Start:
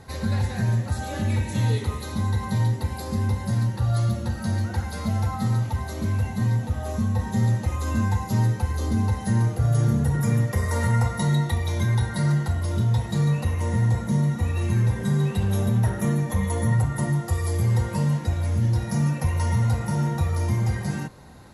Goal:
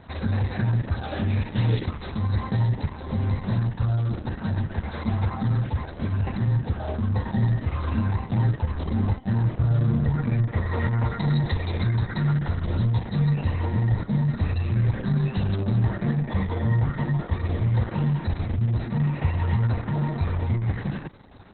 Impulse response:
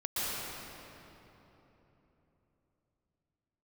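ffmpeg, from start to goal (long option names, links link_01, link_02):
-filter_complex "[0:a]asettb=1/sr,asplit=3[link_01][link_02][link_03];[link_01]atrim=end=6.274[link_04];[link_02]atrim=start=6.27:end=8.91,asetpts=PTS-STARTPTS,afade=type=in:duration=0.004:curve=qsin,afade=type=out:start_time=2.636:duration=0.004:curve=qsin,acompressor=mode=upward:threshold=-23dB:ratio=2.5[link_05];[link_03]atrim=start=8.906[link_06];[link_04][link_05]acrossfade=duration=0.004:curve1=hsin:curve2=qsin[link_07];[link_07][link_06]acrossfade=duration=0.004:curve1=qsin:curve2=hsin" -ar 48000 -c:a libopus -b:a 6k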